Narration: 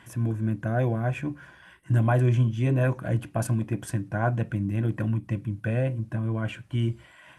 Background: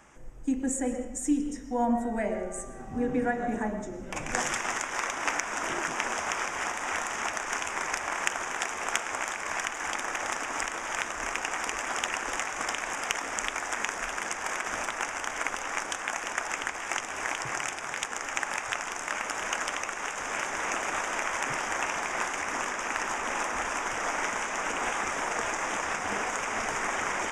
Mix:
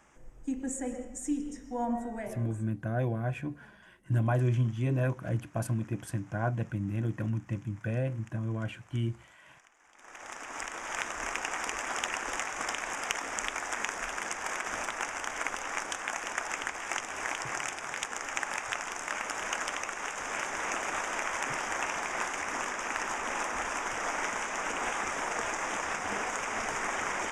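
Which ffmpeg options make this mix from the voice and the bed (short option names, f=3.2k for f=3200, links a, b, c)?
-filter_complex "[0:a]adelay=2200,volume=-5.5dB[a];[1:a]volume=21.5dB,afade=t=out:st=2.01:d=0.69:silence=0.0630957,afade=t=in:st=9.94:d=1.12:silence=0.0446684[b];[a][b]amix=inputs=2:normalize=0"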